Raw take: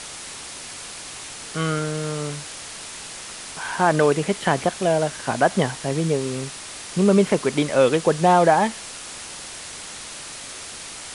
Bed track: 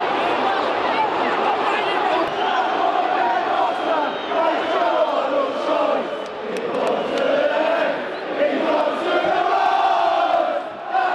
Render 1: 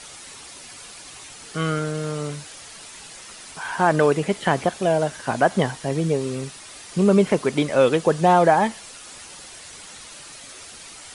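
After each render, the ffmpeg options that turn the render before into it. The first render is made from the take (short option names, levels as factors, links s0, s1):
-af "afftdn=nr=8:nf=-37"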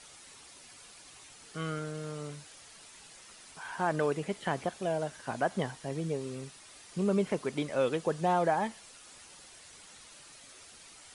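-af "volume=0.251"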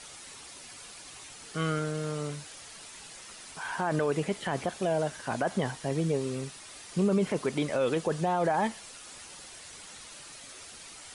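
-af "acontrast=51,alimiter=limit=0.119:level=0:latency=1:release=17"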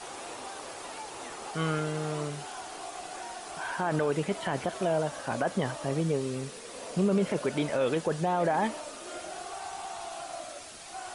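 -filter_complex "[1:a]volume=0.075[s0];[0:a][s0]amix=inputs=2:normalize=0"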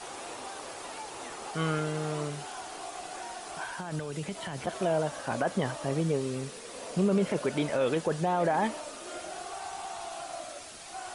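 -filter_complex "[0:a]asettb=1/sr,asplit=3[s0][s1][s2];[s0]atrim=end=3.644[s3];[s1]atrim=start=3.64:end=4.67,asetpts=PTS-STARTPTS,afade=t=in:d=0.004:c=qsin,afade=t=out:st=1.026:d=0.004:c=qsin,acrossover=split=170|3000[s4][s5][s6];[s5]acompressor=threshold=0.0158:ratio=6:attack=3.2:release=140:knee=2.83:detection=peak[s7];[s4][s7][s6]amix=inputs=3:normalize=0[s8];[s2]atrim=start=4.666[s9];[s3][s8]acrossfade=d=0.004:c1=hsin:c2=qsin[s10];[s10][s9]acrossfade=d=0.004:c1=qsin:c2=hsin"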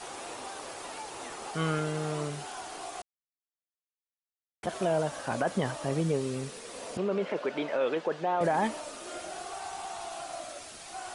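-filter_complex "[0:a]asettb=1/sr,asplit=3[s0][s1][s2];[s0]atrim=end=6.974[s3];[s1]atrim=start=6.97:end=8.41,asetpts=PTS-STARTPTS,afade=t=in:d=0.004:c=qsin,afade=t=out:st=1.436:d=0.004:c=qsin,highpass=330,lowpass=3400[s4];[s2]atrim=start=8.406[s5];[s3][s4]acrossfade=d=0.004:c1=hsin:c2=qsin[s6];[s6][s5]acrossfade=d=0.004:c1=qsin:c2=hsin,asplit=3[s7][s8][s9];[s7]atrim=end=3.02,asetpts=PTS-STARTPTS,afade=t=out:st=3.016:d=0.004:c=hsin[s10];[s8]atrim=start=3.02:end=4.63,asetpts=PTS-STARTPTS,volume=0[s11];[s9]atrim=start=4.63,asetpts=PTS-STARTPTS,afade=t=in:d=0.004:c=hsin[s12];[s10][s11][s12]concat=n=3:v=0:a=1"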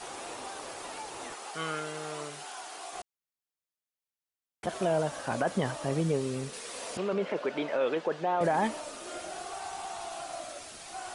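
-filter_complex "[0:a]asettb=1/sr,asplit=3[s0][s1][s2];[s0]atrim=end=1.344[s3];[s1]atrim=start=1.34:end=2.93,asetpts=PTS-STARTPTS,afade=t=in:d=0.004:c=qsin,afade=t=out:st=1.586:d=0.004:c=qsin,highpass=f=710:p=1[s4];[s2]atrim=start=2.926[s5];[s3][s4]acrossfade=d=0.004:c1=hsin:c2=qsin[s6];[s6][s5]acrossfade=d=0.004:c1=qsin:c2=hsin,asettb=1/sr,asplit=3[s7][s8][s9];[s7]atrim=end=6.534[s10];[s8]atrim=start=6.53:end=7.13,asetpts=PTS-STARTPTS,afade=t=in:d=0.004:c=qsin,afade=t=out:st=0.596:d=0.004:c=qsin,tiltshelf=f=640:g=-4.5[s11];[s9]atrim=start=7.126[s12];[s10][s11]acrossfade=d=0.004:c1=hsin:c2=qsin[s13];[s13][s12]acrossfade=d=0.004:c1=qsin:c2=hsin"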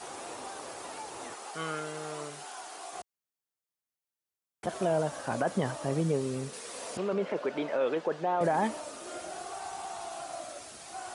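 -af "highpass=61,equalizer=f=2900:w=0.79:g=-3.5"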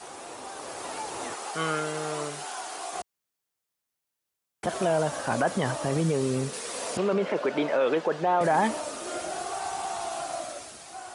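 -filter_complex "[0:a]acrossover=split=890[s0][s1];[s0]alimiter=level_in=1.19:limit=0.0631:level=0:latency=1,volume=0.841[s2];[s2][s1]amix=inputs=2:normalize=0,dynaudnorm=f=110:g=13:m=2.24"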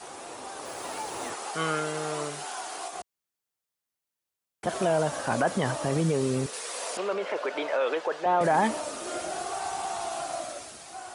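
-filter_complex "[0:a]asettb=1/sr,asplit=3[s0][s1][s2];[s0]atrim=end=0.654[s3];[s1]atrim=start=0.65:end=1.3,asetpts=PTS-STARTPTS,afade=t=in:d=0.004:c=qsin,afade=t=out:st=0.646:d=0.004:c=qsin,acrusher=bits=7:mix=0:aa=0.5[s4];[s2]atrim=start=1.296[s5];[s3][s4]acrossfade=d=0.004:c1=hsin:c2=qsin[s6];[s6][s5]acrossfade=d=0.004:c1=qsin:c2=hsin,asettb=1/sr,asplit=3[s7][s8][s9];[s7]atrim=end=6.464[s10];[s8]atrim=start=6.46:end=8.26,asetpts=PTS-STARTPTS,afade=t=in:d=0.004:c=qsin,afade=t=out:st=1.796:d=0.004:c=qsin,highpass=500[s11];[s9]atrim=start=8.256[s12];[s10][s11]acrossfade=d=0.004:c1=hsin:c2=qsin[s13];[s13][s12]acrossfade=d=0.004:c1=qsin:c2=hsin,asplit=3[s14][s15][s16];[s14]atrim=end=2.882[s17];[s15]atrim=start=2.878:end=4.662,asetpts=PTS-STARTPTS,volume=0.668[s18];[s16]atrim=start=4.658[s19];[s17][s18]acrossfade=d=0.004:c1=hsin:c2=hsin[s20];[s20][s19]acrossfade=d=0.004:c1=hsin:c2=hsin"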